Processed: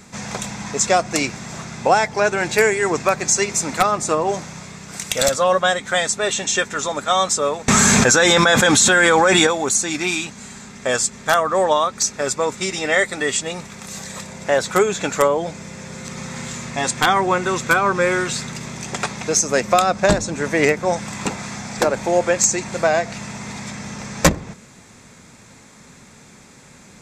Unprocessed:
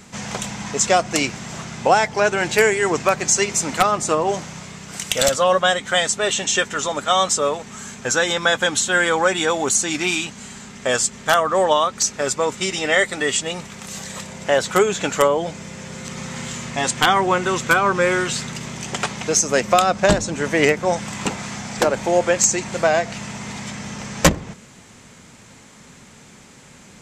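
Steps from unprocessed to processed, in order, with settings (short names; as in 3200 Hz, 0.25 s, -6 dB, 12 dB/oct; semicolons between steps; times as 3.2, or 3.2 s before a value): notch 3000 Hz, Q 7.1; 7.68–9.47 fast leveller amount 100%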